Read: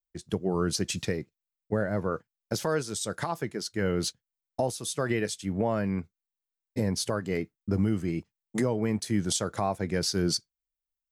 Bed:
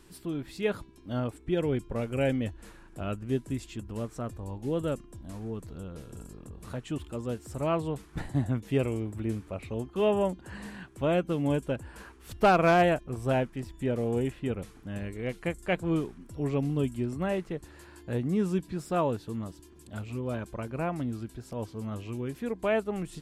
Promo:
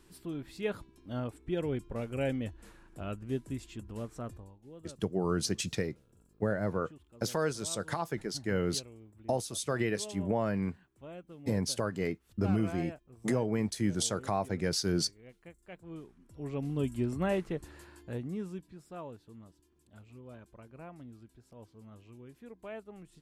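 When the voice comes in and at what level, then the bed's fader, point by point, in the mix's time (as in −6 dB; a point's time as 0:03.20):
4.70 s, −3.0 dB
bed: 0:04.35 −5 dB
0:04.56 −20.5 dB
0:15.73 −20.5 dB
0:17.01 −0.5 dB
0:17.71 −0.5 dB
0:18.79 −16.5 dB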